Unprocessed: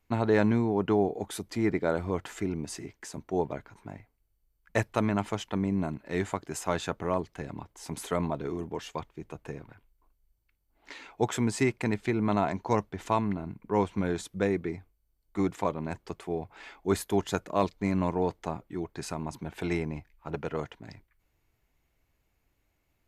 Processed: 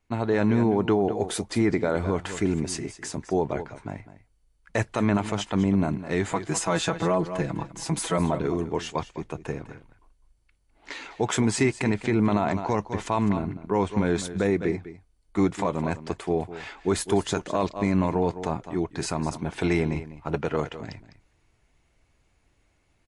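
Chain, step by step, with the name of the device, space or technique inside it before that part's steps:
0:06.31–0:08.18: comb filter 6.1 ms, depth 83%
single-tap delay 204 ms −14.5 dB
low-bitrate web radio (automatic gain control gain up to 8 dB; brickwall limiter −12 dBFS, peak gain reduction 7.5 dB; MP3 48 kbit/s 24,000 Hz)

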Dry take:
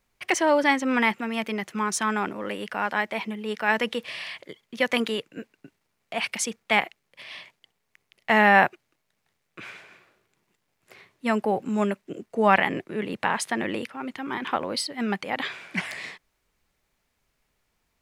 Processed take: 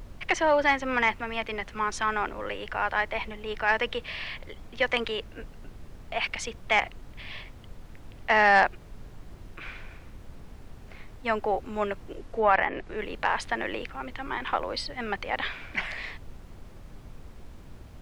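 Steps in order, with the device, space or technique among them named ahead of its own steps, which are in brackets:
aircraft cabin announcement (band-pass filter 420–4,100 Hz; soft clipping −9.5 dBFS, distortion −19 dB; brown noise bed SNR 12 dB)
0:12.14–0:12.98: treble cut that deepens with the level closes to 2,200 Hz, closed at −19.5 dBFS

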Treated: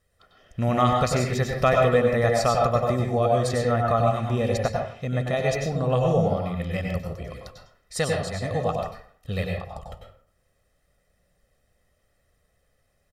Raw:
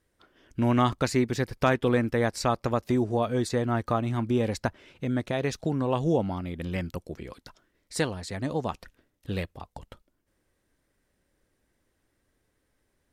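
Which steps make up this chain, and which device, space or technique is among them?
microphone above a desk (comb filter 1.6 ms, depth 73%; convolution reverb RT60 0.55 s, pre-delay 91 ms, DRR 0 dB)

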